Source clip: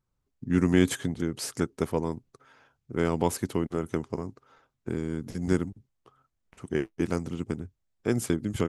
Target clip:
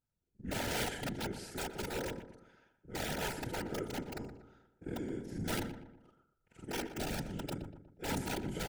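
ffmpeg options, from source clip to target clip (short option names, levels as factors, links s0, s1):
-filter_complex "[0:a]afftfilt=real='re':imag='-im':win_size=4096:overlap=0.75,acrossover=split=3800[s0][s1];[s1]acompressor=threshold=0.00447:ratio=4:attack=1:release=60[s2];[s0][s2]amix=inputs=2:normalize=0,aeval=exprs='(mod(16.8*val(0)+1,2)-1)/16.8':c=same,afftfilt=real='hypot(re,im)*cos(2*PI*random(0))':imag='hypot(re,im)*sin(2*PI*random(1))':win_size=512:overlap=0.75,asuperstop=centerf=1100:order=8:qfactor=4.2,asplit=2[s3][s4];[s4]adelay=120,lowpass=f=2000:p=1,volume=0.316,asplit=2[s5][s6];[s6]adelay=120,lowpass=f=2000:p=1,volume=0.46,asplit=2[s7][s8];[s8]adelay=120,lowpass=f=2000:p=1,volume=0.46,asplit=2[s9][s10];[s10]adelay=120,lowpass=f=2000:p=1,volume=0.46,asplit=2[s11][s12];[s12]adelay=120,lowpass=f=2000:p=1,volume=0.46[s13];[s3][s5][s7][s9][s11][s13]amix=inputs=6:normalize=0,volume=1.26"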